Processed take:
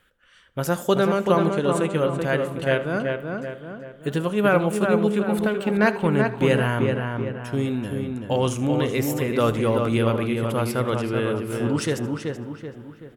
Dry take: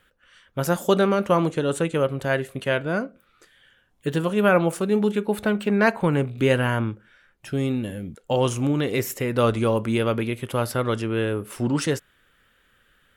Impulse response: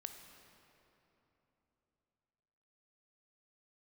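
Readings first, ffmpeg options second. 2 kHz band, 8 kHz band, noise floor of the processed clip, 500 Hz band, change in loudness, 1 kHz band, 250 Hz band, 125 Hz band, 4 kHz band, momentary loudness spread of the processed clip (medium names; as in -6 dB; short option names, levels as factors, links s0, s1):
+0.5 dB, -0.5 dB, -50 dBFS, +1.0 dB, +0.5 dB, +0.5 dB, +1.0 dB, +1.0 dB, 0.0 dB, 11 LU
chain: -filter_complex "[0:a]asplit=2[s0][s1];[s1]adelay=381,lowpass=f=2500:p=1,volume=0.631,asplit=2[s2][s3];[s3]adelay=381,lowpass=f=2500:p=1,volume=0.47,asplit=2[s4][s5];[s5]adelay=381,lowpass=f=2500:p=1,volume=0.47,asplit=2[s6][s7];[s7]adelay=381,lowpass=f=2500:p=1,volume=0.47,asplit=2[s8][s9];[s9]adelay=381,lowpass=f=2500:p=1,volume=0.47,asplit=2[s10][s11];[s11]adelay=381,lowpass=f=2500:p=1,volume=0.47[s12];[s0][s2][s4][s6][s8][s10][s12]amix=inputs=7:normalize=0,asplit=2[s13][s14];[1:a]atrim=start_sample=2205,adelay=78[s15];[s14][s15]afir=irnorm=-1:irlink=0,volume=0.237[s16];[s13][s16]amix=inputs=2:normalize=0,volume=0.891"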